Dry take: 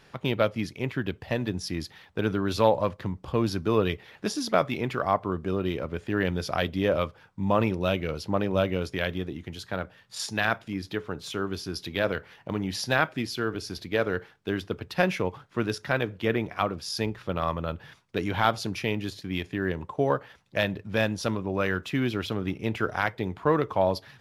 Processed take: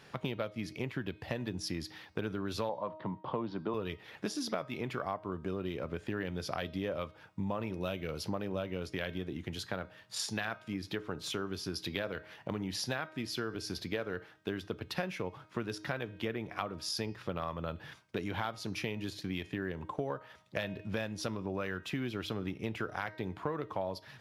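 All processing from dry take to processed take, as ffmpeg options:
-filter_complex "[0:a]asettb=1/sr,asplit=3[a][b][c];[a]atrim=end=2.694[d];[b]atrim=start=2.69:end=3.74,asetpts=PTS-STARTPTS,afade=t=in:d=0.004:c=qsin,afade=t=out:st=1.046:d=0.004:c=qsin,agate=range=-33dB:threshold=-44dB:ratio=3:release=100:detection=peak,highpass=f=130:w=0.5412,highpass=f=130:w=1.3066,equalizer=f=630:t=q:w=4:g=4,equalizer=f=950:t=q:w=4:g=9,equalizer=f=1.6k:t=q:w=4:g=-4,equalizer=f=2.5k:t=q:w=4:g=-7,lowpass=f=3.4k:w=0.5412,lowpass=f=3.4k:w=1.3066[e];[c]atrim=start=3.736[f];[d][e]acrossfade=d=0.004:c1=hsin:c2=qsin[g];[g][f]acrossfade=d=0.004:c1=qsin:c2=hsin,asettb=1/sr,asplit=3[h][i][j];[h]atrim=end=7.734[k];[i]atrim=start=7.73:end=8.5,asetpts=PTS-STARTPTS,afade=t=in:d=0.004:c=qsin,afade=t=out:st=0.766:d=0.004:c=qsin,highshelf=f=11k:g=8.5,acompressor=mode=upward:threshold=-33dB:ratio=2.5:attack=3.2:release=140:knee=2.83:detection=peak[l];[j]atrim=start=8.496[m];[k][l]acrossfade=d=0.004:c1=hsin:c2=qsin[n];[n][m]acrossfade=d=0.004:c1=qsin:c2=hsin,highpass=71,bandreject=f=313.8:t=h:w=4,bandreject=f=627.6:t=h:w=4,bandreject=f=941.4:t=h:w=4,bandreject=f=1.2552k:t=h:w=4,bandreject=f=1.569k:t=h:w=4,bandreject=f=1.8828k:t=h:w=4,bandreject=f=2.1966k:t=h:w=4,bandreject=f=2.5104k:t=h:w=4,bandreject=f=2.8242k:t=h:w=4,bandreject=f=3.138k:t=h:w=4,bandreject=f=3.4518k:t=h:w=4,bandreject=f=3.7656k:t=h:w=4,bandreject=f=4.0794k:t=h:w=4,bandreject=f=4.3932k:t=h:w=4,bandreject=f=4.707k:t=h:w=4,bandreject=f=5.0208k:t=h:w=4,bandreject=f=5.3346k:t=h:w=4,bandreject=f=5.6484k:t=h:w=4,bandreject=f=5.9622k:t=h:w=4,bandreject=f=6.276k:t=h:w=4,bandreject=f=6.5898k:t=h:w=4,acompressor=threshold=-33dB:ratio=6"

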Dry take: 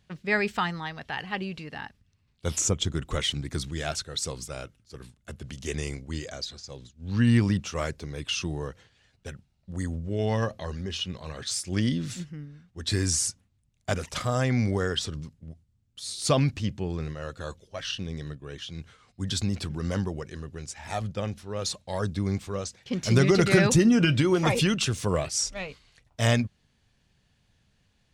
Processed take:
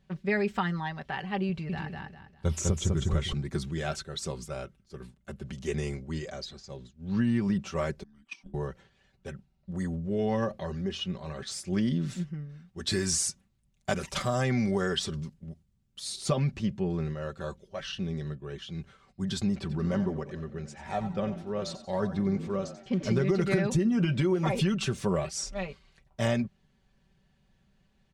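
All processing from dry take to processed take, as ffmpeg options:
-filter_complex "[0:a]asettb=1/sr,asplit=3[a][b][c];[a]atrim=end=1.494[d];[b]atrim=start=1.49:end=3.33,asetpts=PTS-STARTPTS,afade=t=in:d=0.004:c=qsin,afade=t=out:st=1.836:d=0.004:c=qsin,equalizer=f=87:t=o:w=0.88:g=14,aecho=1:1:200|400|600|800:0.708|0.205|0.0595|0.0173,atrim=end_sample=81144[e];[c]atrim=start=3.326[f];[d][e]acrossfade=d=0.004:c1=hsin:c2=qsin[g];[g][f]acrossfade=d=0.004:c1=qsin:c2=hsin,asettb=1/sr,asplit=3[h][i][j];[h]atrim=end=8.034[k];[i]atrim=start=8.03:end=8.54,asetpts=PTS-STARTPTS,afade=t=in:d=0.004:c=qsin,afade=t=out:st=0.506:d=0.004:c=qsin,agate=range=-24dB:threshold=-27dB:ratio=16:release=100:detection=peak,afreqshift=-360[l];[j]atrim=start=8.536[m];[k][l]acrossfade=d=0.004:c1=hsin:c2=qsin[n];[n][m]acrossfade=d=0.004:c1=qsin:c2=hsin,asettb=1/sr,asplit=3[o][p][q];[o]atrim=end=12.494[r];[p]atrim=start=12.49:end=16.16,asetpts=PTS-STARTPTS,afade=t=in:d=0.004:c=qsin,afade=t=out:st=3.666:d=0.004:c=qsin,highshelf=f=2.2k:g=7.5,asoftclip=type=hard:threshold=-10dB[s];[q]atrim=start=16.156[t];[r][s]acrossfade=d=0.004:c1=hsin:c2=qsin[u];[u][t]acrossfade=d=0.004:c1=qsin:c2=hsin,asettb=1/sr,asplit=3[v][w][x];[v]atrim=end=19.584[y];[w]atrim=start=19.58:end=23.25,asetpts=PTS-STARTPTS,afade=t=in:d=0.004:c=qsin,afade=t=out:st=3.666:d=0.004:c=qsin,highshelf=f=8.2k:g=-12,asplit=5[z][aa][ab][ac][ad];[aa]adelay=90,afreqshift=64,volume=-12.5dB[ae];[ab]adelay=180,afreqshift=128,volume=-20.5dB[af];[ac]adelay=270,afreqshift=192,volume=-28.4dB[ag];[ad]adelay=360,afreqshift=256,volume=-36.4dB[ah];[z][ae][af][ag][ah]amix=inputs=5:normalize=0,atrim=end_sample=161847[ai];[x]atrim=start=23.246[aj];[y][ai]acrossfade=d=0.004:c1=hsin:c2=qsin[ak];[ak][aj]acrossfade=d=0.004:c1=qsin:c2=hsin,highshelf=f=2.2k:g=-10,aecho=1:1:5.2:0.66,acompressor=threshold=-23dB:ratio=5"

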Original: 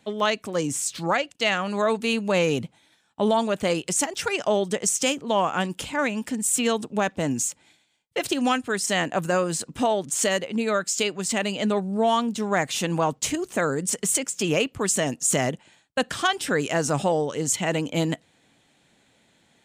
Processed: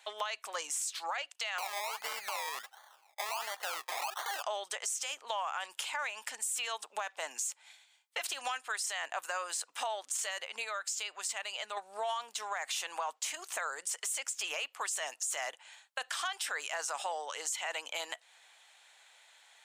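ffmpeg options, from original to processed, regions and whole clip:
-filter_complex "[0:a]asettb=1/sr,asplit=3[a][b][c];[a]atrim=end=1.584[d];[b]atrim=start=1.58:end=4.43,asetpts=PTS-STARTPTS,afade=t=in:d=0.004:c=qsin,afade=t=out:st=2.846:d=0.004:c=qsin,equalizer=f=800:w=6:g=12.5,acrusher=samples=24:mix=1:aa=0.000001:lfo=1:lforange=14.4:lforate=1.4[e];[c]atrim=start=4.426[f];[d][e]acrossfade=d=0.004:c1=hsin:c2=qsin[g];[g][f]acrossfade=d=0.004:c1=qsin:c2=hsin,asettb=1/sr,asplit=3[h][i][j];[h]atrim=end=10.644[k];[i]atrim=start=10.64:end=11.77,asetpts=PTS-STARTPTS,afade=t=in:d=0.004:c=qsin,afade=t=out:st=1.126:d=0.004:c=qsin,acompressor=threshold=-31dB:ratio=2:attack=3.2:release=140:knee=1:detection=peak,equalizer=f=110:w=0.97:g=8[l];[j]atrim=start=11.766[m];[k][l]acrossfade=d=0.004:c1=hsin:c2=qsin[n];[n][m]acrossfade=d=0.004:c1=qsin:c2=hsin,highpass=f=780:w=0.5412,highpass=f=780:w=1.3066,alimiter=limit=-20.5dB:level=0:latency=1:release=11,acompressor=threshold=-41dB:ratio=2.5,volume=3.5dB"

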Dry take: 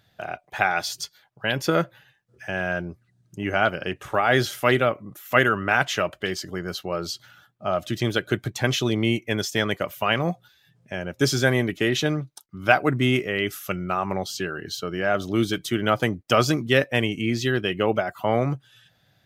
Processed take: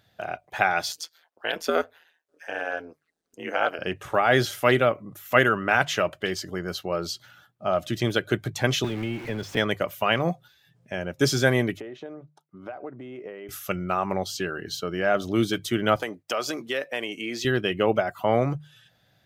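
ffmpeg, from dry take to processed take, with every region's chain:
-filter_complex "[0:a]asettb=1/sr,asplit=3[a][b][c];[a]atrim=end=0.924[d];[b]atrim=start=0.92:end=3.79,asetpts=PTS-STARTPTS,afade=t=in:d=0.004:c=qsin,afade=t=out:st=2.866:d=0.004:c=qsin,highpass=f=310:w=0.5412,highpass=f=310:w=1.3066,aeval=exprs='val(0)*sin(2*PI*82*n/s)':c=same[e];[c]atrim=start=3.786[f];[d][e]acrossfade=d=0.004:c1=hsin:c2=qsin[g];[g][f]acrossfade=d=0.004:c1=qsin:c2=hsin,asettb=1/sr,asplit=3[h][i][j];[h]atrim=end=8.844[k];[i]atrim=start=8.84:end=9.57,asetpts=PTS-STARTPTS,afade=t=in:d=0.004:c=qsin,afade=t=out:st=0.726:d=0.004:c=qsin,aeval=exprs='val(0)+0.5*0.0562*sgn(val(0))':c=same,bass=f=250:g=3,treble=f=4k:g=-13,acrossover=split=560|1300[l][m][n];[l]acompressor=threshold=-28dB:ratio=4[o];[m]acompressor=threshold=-45dB:ratio=4[p];[n]acompressor=threshold=-39dB:ratio=4[q];[o][p][q]amix=inputs=3:normalize=0[r];[j]atrim=start=9.566[s];[k][r]acrossfade=d=0.004:c1=hsin:c2=qsin[t];[t][s]acrossfade=d=0.004:c1=qsin:c2=hsin,asettb=1/sr,asplit=3[u][v][w];[u]atrim=end=11.804[x];[v]atrim=start=11.8:end=13.49,asetpts=PTS-STARTPTS,afade=t=in:d=0.004:c=qsin,afade=t=out:st=1.686:d=0.004:c=qsin,acompressor=threshold=-29dB:ratio=16:attack=3.2:release=140:knee=1:detection=peak,bandpass=f=540:t=q:w=0.91[y];[w]atrim=start=13.486[z];[x][y]acrossfade=d=0.004:c1=hsin:c2=qsin[aa];[aa][z]acrossfade=d=0.004:c1=qsin:c2=hsin,asettb=1/sr,asplit=3[ab][ac][ad];[ab]atrim=end=15.964[ae];[ac]atrim=start=15.96:end=17.45,asetpts=PTS-STARTPTS,afade=t=in:d=0.004:c=qsin,afade=t=out:st=1.486:d=0.004:c=qsin,highpass=380,acompressor=threshold=-26dB:ratio=2.5:attack=3.2:release=140:knee=1:detection=peak[af];[ad]atrim=start=17.446[ag];[ae][af]acrossfade=d=0.004:c1=hsin:c2=qsin[ah];[ah][ag]acrossfade=d=0.004:c1=qsin:c2=hsin,equalizer=f=570:w=1.5:g=2,bandreject=f=50:t=h:w=6,bandreject=f=100:t=h:w=6,bandreject=f=150:t=h:w=6,volume=-1dB"

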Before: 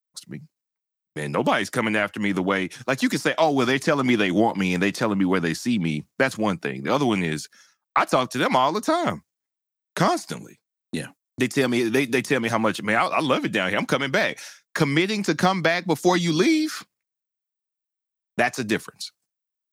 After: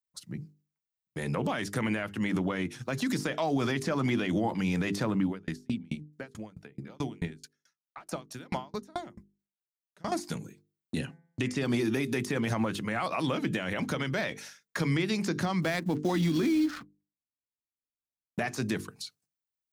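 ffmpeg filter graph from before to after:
-filter_complex "[0:a]asettb=1/sr,asplit=3[a][b][c];[a]atrim=end=5.264[d];[b]atrim=start=5.26:end=10.12,asetpts=PTS-STARTPTS,afade=t=in:d=0.004:c=qsin,afade=t=out:st=4.856:d=0.004:c=qsin,bandreject=f=1.1k:w=14,aeval=exprs='val(0)*pow(10,-39*if(lt(mod(4.6*n/s,1),2*abs(4.6)/1000),1-mod(4.6*n/s,1)/(2*abs(4.6)/1000),(mod(4.6*n/s,1)-2*abs(4.6)/1000)/(1-2*abs(4.6)/1000))/20)':c=same[e];[c]atrim=start=10.116[f];[d][e]acrossfade=d=0.004:c1=hsin:c2=qsin[g];[g][f]acrossfade=d=0.004:c1=qsin:c2=hsin,asettb=1/sr,asplit=3[h][i][j];[h]atrim=end=10.984[k];[i]atrim=start=10.98:end=11.65,asetpts=PTS-STARTPTS,afade=t=in:d=0.004:c=qsin,afade=t=out:st=0.666:d=0.004:c=qsin,lowpass=7.9k,equalizer=f=2.8k:w=4.5:g=6.5,bandreject=f=169:t=h:w=4,bandreject=f=338:t=h:w=4,bandreject=f=507:t=h:w=4,bandreject=f=676:t=h:w=4,bandreject=f=845:t=h:w=4,bandreject=f=1.014k:t=h:w=4,bandreject=f=1.183k:t=h:w=4,bandreject=f=1.352k:t=h:w=4,bandreject=f=1.521k:t=h:w=4,bandreject=f=1.69k:t=h:w=4,bandreject=f=1.859k:t=h:w=4,bandreject=f=2.028k:t=h:w=4,bandreject=f=2.197k:t=h:w=4,bandreject=f=2.366k:t=h:w=4[l];[j]atrim=start=11.646[m];[k][l]acrossfade=d=0.004:c1=hsin:c2=qsin[n];[n][m]acrossfade=d=0.004:c1=qsin:c2=hsin,asettb=1/sr,asplit=3[o][p][q];[o]atrim=end=15.624[r];[p]atrim=start=15.62:end=18.39,asetpts=PTS-STARTPTS,afade=t=in:d=0.004:c=qsin,afade=t=out:st=2.766:d=0.004:c=qsin,equalizer=f=270:w=3:g=8.5,adynamicsmooth=sensitivity=7:basefreq=720,acrusher=bits=7:mode=log:mix=0:aa=0.000001[s];[q]atrim=start=18.386[t];[r][s]acrossfade=d=0.004:c1=hsin:c2=qsin[u];[u][t]acrossfade=d=0.004:c1=qsin:c2=hsin,equalizer=f=68:t=o:w=2.9:g=11.5,bandreject=f=50:t=h:w=6,bandreject=f=100:t=h:w=6,bandreject=f=150:t=h:w=6,bandreject=f=200:t=h:w=6,bandreject=f=250:t=h:w=6,bandreject=f=300:t=h:w=6,bandreject=f=350:t=h:w=6,bandreject=f=400:t=h:w=6,bandreject=f=450:t=h:w=6,alimiter=limit=-13.5dB:level=0:latency=1:release=53,volume=-6.5dB"

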